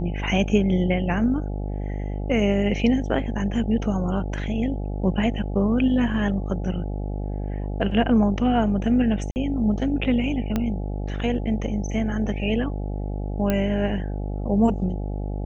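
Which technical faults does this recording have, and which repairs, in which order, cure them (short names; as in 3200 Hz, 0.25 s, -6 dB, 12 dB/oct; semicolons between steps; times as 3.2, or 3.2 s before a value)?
buzz 50 Hz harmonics 17 -28 dBFS
9.31–9.36 gap 49 ms
10.56 pop -11 dBFS
13.5 pop -10 dBFS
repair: de-click; de-hum 50 Hz, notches 17; interpolate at 9.31, 49 ms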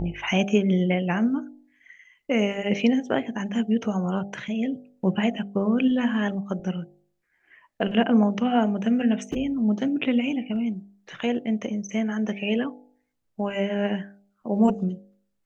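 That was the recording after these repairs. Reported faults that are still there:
10.56 pop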